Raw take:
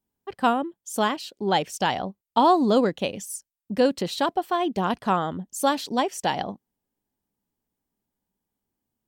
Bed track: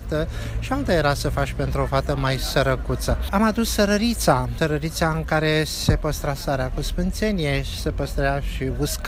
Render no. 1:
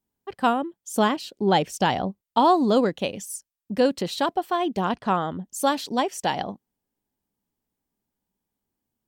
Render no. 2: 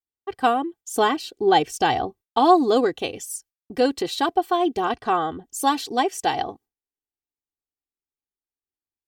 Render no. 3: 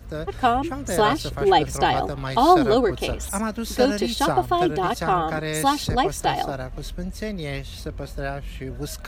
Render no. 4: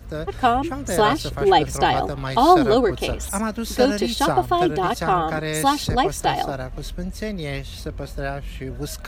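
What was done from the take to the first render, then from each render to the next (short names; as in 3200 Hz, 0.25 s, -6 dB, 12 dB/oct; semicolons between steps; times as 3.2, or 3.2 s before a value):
0.92–2.24 low shelf 500 Hz +6 dB; 4.89–5.44 air absorption 54 m
gate with hold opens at -46 dBFS; comb 2.6 ms, depth 79%
add bed track -7.5 dB
gain +1.5 dB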